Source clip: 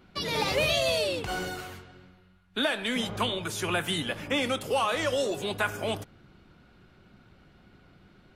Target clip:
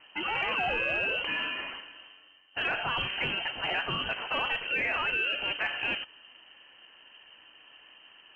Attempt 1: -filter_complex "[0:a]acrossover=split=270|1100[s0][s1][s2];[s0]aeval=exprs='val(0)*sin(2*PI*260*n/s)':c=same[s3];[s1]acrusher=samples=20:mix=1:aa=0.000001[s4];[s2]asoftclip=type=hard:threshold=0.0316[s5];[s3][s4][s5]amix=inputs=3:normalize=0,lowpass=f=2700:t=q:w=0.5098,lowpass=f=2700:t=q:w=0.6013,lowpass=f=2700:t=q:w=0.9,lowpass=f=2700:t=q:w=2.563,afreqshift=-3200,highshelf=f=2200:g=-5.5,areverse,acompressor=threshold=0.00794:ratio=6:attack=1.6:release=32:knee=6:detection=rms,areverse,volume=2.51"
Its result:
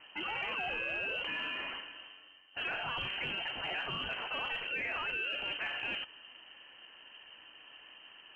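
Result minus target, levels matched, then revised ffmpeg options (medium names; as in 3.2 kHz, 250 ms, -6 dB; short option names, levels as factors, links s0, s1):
hard clipper: distortion +37 dB; compression: peak gain reduction +7 dB
-filter_complex "[0:a]acrossover=split=270|1100[s0][s1][s2];[s0]aeval=exprs='val(0)*sin(2*PI*260*n/s)':c=same[s3];[s1]acrusher=samples=20:mix=1:aa=0.000001[s4];[s2]asoftclip=type=hard:threshold=0.119[s5];[s3][s4][s5]amix=inputs=3:normalize=0,lowpass=f=2700:t=q:w=0.5098,lowpass=f=2700:t=q:w=0.6013,lowpass=f=2700:t=q:w=0.9,lowpass=f=2700:t=q:w=2.563,afreqshift=-3200,highshelf=f=2200:g=-5.5,areverse,acompressor=threshold=0.0211:ratio=6:attack=1.6:release=32:knee=6:detection=rms,areverse,volume=2.51"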